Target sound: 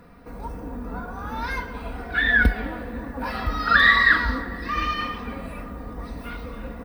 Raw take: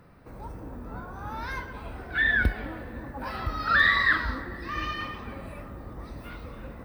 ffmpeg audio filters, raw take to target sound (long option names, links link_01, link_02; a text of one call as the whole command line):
ffmpeg -i in.wav -af "aecho=1:1:4.2:0.58,volume=4.5dB" out.wav